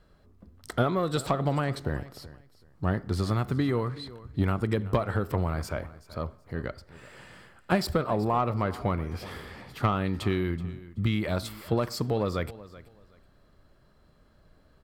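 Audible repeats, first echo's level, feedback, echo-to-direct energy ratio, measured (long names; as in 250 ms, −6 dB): 2, −18.0 dB, 22%, −18.0 dB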